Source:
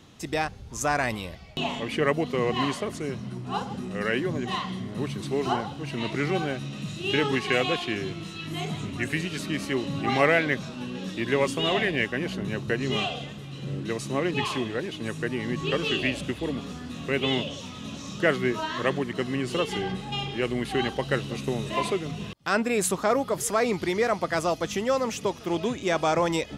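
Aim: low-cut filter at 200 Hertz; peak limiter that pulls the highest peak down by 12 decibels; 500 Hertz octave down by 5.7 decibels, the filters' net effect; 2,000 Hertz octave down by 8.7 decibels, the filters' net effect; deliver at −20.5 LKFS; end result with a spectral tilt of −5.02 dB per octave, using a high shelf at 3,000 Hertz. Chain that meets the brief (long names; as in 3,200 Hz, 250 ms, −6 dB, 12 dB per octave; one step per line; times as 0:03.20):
high-pass filter 200 Hz
parametric band 500 Hz −6.5 dB
parametric band 2,000 Hz −7.5 dB
high-shelf EQ 3,000 Hz −8.5 dB
level +16 dB
brickwall limiter −9.5 dBFS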